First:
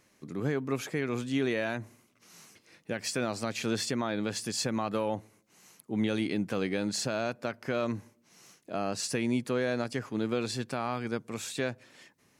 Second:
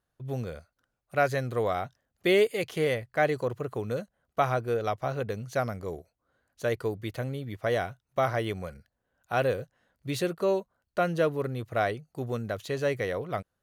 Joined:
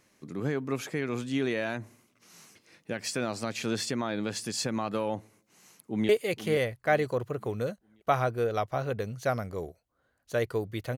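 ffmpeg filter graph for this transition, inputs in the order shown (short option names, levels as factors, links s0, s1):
-filter_complex "[0:a]apad=whole_dur=10.97,atrim=end=10.97,atrim=end=6.092[s0];[1:a]atrim=start=2.388:end=7.27[s1];[s0][s1]acrossfade=d=0.004:c1=hsin:c2=hsin,asplit=2[s2][s3];[s3]afade=t=in:st=5.36:d=0.01,afade=t=out:st=6.09:d=0.01,aecho=0:1:480|960|1440|1920:0.281838|0.112735|0.0450941|0.0180377[s4];[s2][s4]amix=inputs=2:normalize=0"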